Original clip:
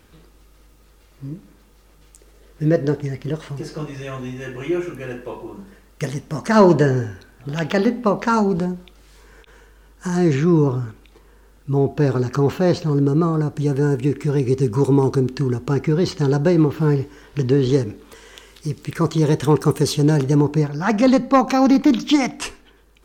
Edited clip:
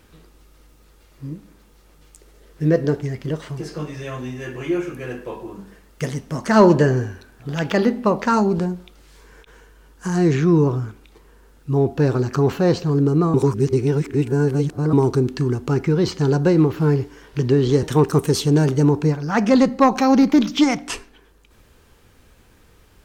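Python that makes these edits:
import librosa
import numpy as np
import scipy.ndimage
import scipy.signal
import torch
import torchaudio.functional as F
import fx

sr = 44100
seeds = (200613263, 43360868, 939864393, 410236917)

y = fx.edit(x, sr, fx.reverse_span(start_s=13.34, length_s=1.59),
    fx.cut(start_s=17.83, length_s=1.52), tone=tone)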